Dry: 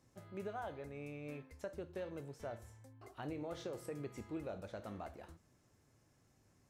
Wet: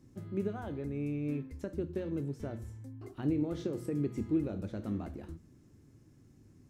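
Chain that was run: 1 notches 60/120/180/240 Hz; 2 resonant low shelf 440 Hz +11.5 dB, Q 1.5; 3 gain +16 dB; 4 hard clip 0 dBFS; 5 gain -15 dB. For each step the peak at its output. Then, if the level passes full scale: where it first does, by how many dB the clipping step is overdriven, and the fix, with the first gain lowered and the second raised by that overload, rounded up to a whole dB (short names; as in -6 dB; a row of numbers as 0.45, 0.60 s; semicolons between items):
-31.5, -21.5, -5.5, -5.5, -20.5 dBFS; no overload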